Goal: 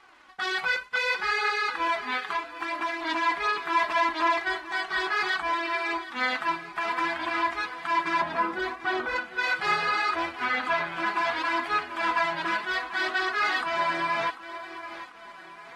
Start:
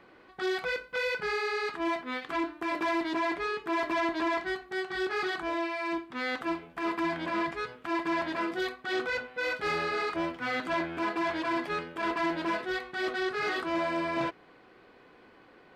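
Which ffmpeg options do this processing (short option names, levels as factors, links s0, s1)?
-filter_complex "[0:a]asettb=1/sr,asplit=3[s0][s1][s2];[s0]atrim=end=8.214[s3];[s1]atrim=start=8.21:end=9.16,asetpts=PTS-STARTPTS,afade=t=in:d=0.004:c=qsin,afade=t=out:st=0.946:d=0.004:c=qsin,tiltshelf=f=1300:g=8.5[s4];[s2]atrim=start=9.156[s5];[s3][s4]acrossfade=d=0.004:c1=hsin:c2=qsin[s6];[s6][s5]acrossfade=d=0.004:c1=qsin:c2=hsin,asplit=2[s7][s8];[s8]aecho=0:1:743|1486|2229|2972|3715:0.2|0.0958|0.046|0.0221|0.0106[s9];[s7][s9]amix=inputs=2:normalize=0,asplit=3[s10][s11][s12];[s10]afade=t=out:st=2.19:d=0.02[s13];[s11]acompressor=threshold=0.0251:ratio=10,afade=t=in:st=2.19:d=0.02,afade=t=out:st=3.01:d=0.02[s14];[s12]afade=t=in:st=3.01:d=0.02[s15];[s13][s14][s15]amix=inputs=3:normalize=0,asplit=2[s16][s17];[s17]alimiter=limit=0.0631:level=0:latency=1:release=334,volume=1[s18];[s16][s18]amix=inputs=2:normalize=0,aeval=exprs='sgn(val(0))*max(abs(val(0))-0.00158,0)':c=same,lowshelf=f=670:t=q:w=1.5:g=-10,flanger=delay=2.4:depth=3.1:regen=-12:speed=0.68:shape=triangular,asettb=1/sr,asplit=3[s19][s20][s21];[s19]atrim=end=10.444[s22];[s20]atrim=start=10.44:end=11.06,asetpts=PTS-STARTPTS,afade=t=in:d=0.004:c=qsin,afade=t=out:st=0.616:d=0.004:c=qsin,acrossover=split=3500[s23][s24];[s24]acompressor=threshold=0.00355:ratio=4:attack=1:release=60[s25];[s23][s25]amix=inputs=2:normalize=0[s26];[s21]atrim=start=11.056[s27];[s22][s26]acrossfade=d=0.004:c1=hsin:c2=qsin[s28];[s28][s27]acrossfade=d=0.004:c1=qsin:c2=hsin,volume=1.41" -ar 44100 -c:a aac -b:a 32k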